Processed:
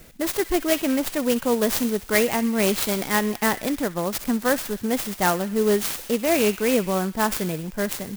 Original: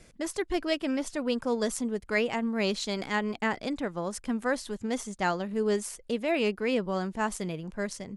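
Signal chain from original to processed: treble shelf 8.6 kHz +11 dB; feedback echo behind a high-pass 63 ms, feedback 65%, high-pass 2.4 kHz, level -10 dB; sampling jitter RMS 0.059 ms; trim +7 dB

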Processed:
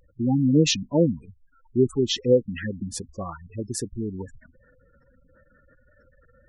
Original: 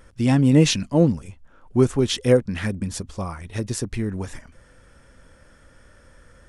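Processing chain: spectral gate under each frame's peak -15 dB strong; bass shelf 170 Hz -9.5 dB

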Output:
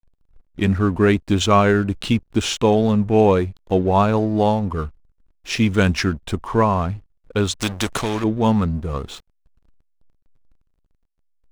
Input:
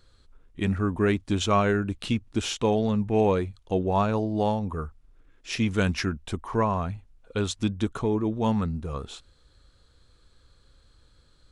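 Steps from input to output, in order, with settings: hysteresis with a dead band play -43 dBFS; 7.55–8.24 s: spectrum-flattening compressor 2:1; trim +7.5 dB

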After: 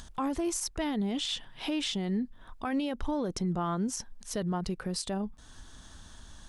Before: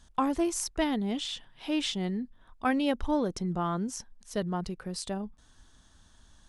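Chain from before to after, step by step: in parallel at +2 dB: compression, threshold -41 dBFS, peak gain reduction 17.5 dB; on the sum: peak limiter -23.5 dBFS, peak gain reduction 10 dB; upward compressor, threshold -43 dBFS

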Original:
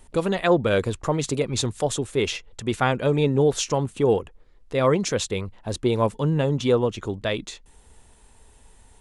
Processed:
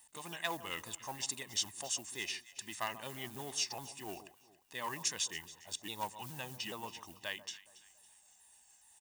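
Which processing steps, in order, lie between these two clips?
sawtooth pitch modulation -3.5 st, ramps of 420 ms; treble shelf 2.3 kHz -8 dB; comb 1.1 ms, depth 64%; in parallel at -6 dB: hard clipper -19 dBFS, distortion -12 dB; on the sum: companded quantiser 8-bit; differentiator; on a send: echo whose repeats swap between lows and highs 139 ms, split 1.2 kHz, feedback 58%, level -13 dB

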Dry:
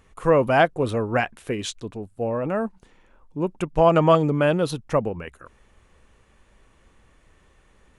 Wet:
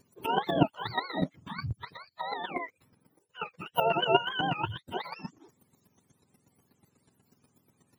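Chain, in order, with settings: spectrum inverted on a logarithmic axis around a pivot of 670 Hz; vibrato 7 Hz 62 cents; square tremolo 8.2 Hz, depth 65%, duty 15%; trim -1 dB

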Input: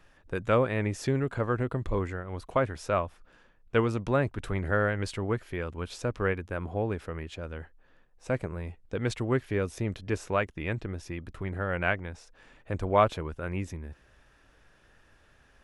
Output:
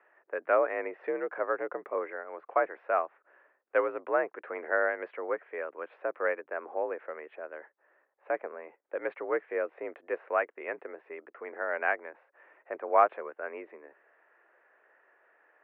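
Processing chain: mistuned SSB +61 Hz 340–2100 Hz

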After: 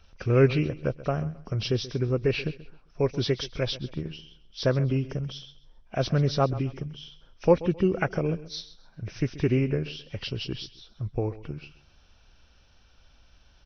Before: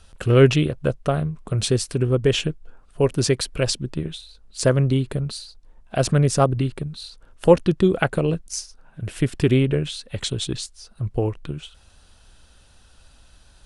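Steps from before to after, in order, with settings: knee-point frequency compression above 1.9 kHz 1.5:1; on a send: feedback delay 132 ms, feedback 29%, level -17 dB; on the sum: trim -6 dB

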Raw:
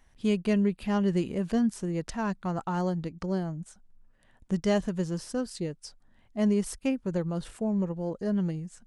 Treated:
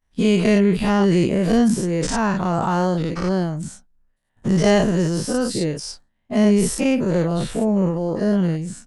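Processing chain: every event in the spectrogram widened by 120 ms; expander -41 dBFS; trim +7 dB

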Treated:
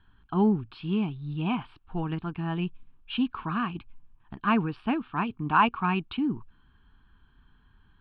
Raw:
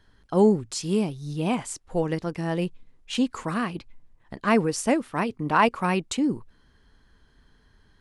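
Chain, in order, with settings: inverse Chebyshev low-pass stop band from 5.9 kHz, stop band 40 dB; peaking EQ 2.1 kHz +6 dB 0.62 oct; static phaser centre 2 kHz, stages 6

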